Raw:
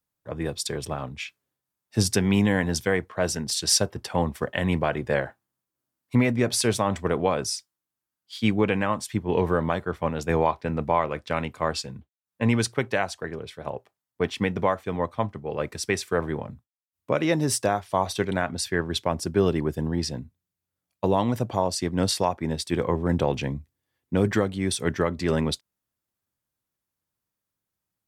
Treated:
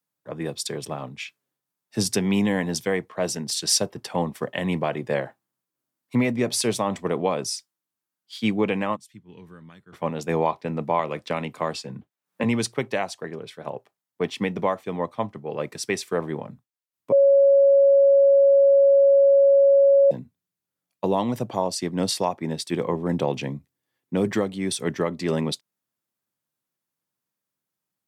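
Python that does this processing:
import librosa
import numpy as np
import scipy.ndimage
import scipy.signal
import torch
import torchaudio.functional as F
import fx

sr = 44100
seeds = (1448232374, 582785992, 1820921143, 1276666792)

y = fx.tone_stack(x, sr, knobs='6-0-2', at=(8.95, 9.92), fade=0.02)
y = fx.band_squash(y, sr, depth_pct=70, at=(10.99, 12.44))
y = fx.edit(y, sr, fx.bleep(start_s=17.12, length_s=2.99, hz=555.0, db=-12.0), tone=tone)
y = scipy.signal.sosfilt(scipy.signal.butter(4, 130.0, 'highpass', fs=sr, output='sos'), y)
y = fx.dynamic_eq(y, sr, hz=1500.0, q=3.9, threshold_db=-47.0, ratio=4.0, max_db=-7)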